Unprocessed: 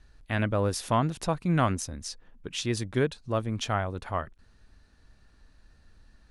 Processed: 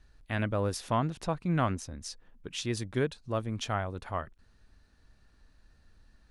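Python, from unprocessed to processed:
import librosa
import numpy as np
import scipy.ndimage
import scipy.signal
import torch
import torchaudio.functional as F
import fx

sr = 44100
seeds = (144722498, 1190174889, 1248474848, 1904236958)

y = fx.high_shelf(x, sr, hz=fx.line((0.76, 9200.0), (2.01, 6200.0)), db=-10.0, at=(0.76, 2.01), fade=0.02)
y = y * 10.0 ** (-3.5 / 20.0)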